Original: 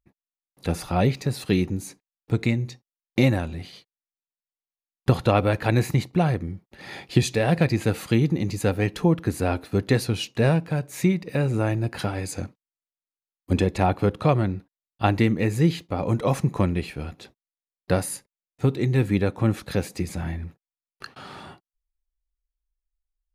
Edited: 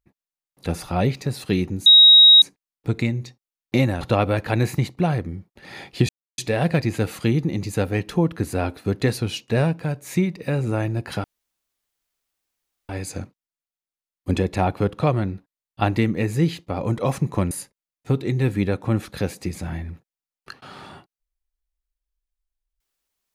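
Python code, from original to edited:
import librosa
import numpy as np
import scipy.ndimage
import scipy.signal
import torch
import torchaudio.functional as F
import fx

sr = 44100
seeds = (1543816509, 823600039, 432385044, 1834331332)

y = fx.edit(x, sr, fx.insert_tone(at_s=1.86, length_s=0.56, hz=3800.0, db=-6.5),
    fx.cut(start_s=3.45, length_s=1.72),
    fx.insert_silence(at_s=7.25, length_s=0.29),
    fx.insert_room_tone(at_s=12.11, length_s=1.65),
    fx.cut(start_s=16.73, length_s=1.32), tone=tone)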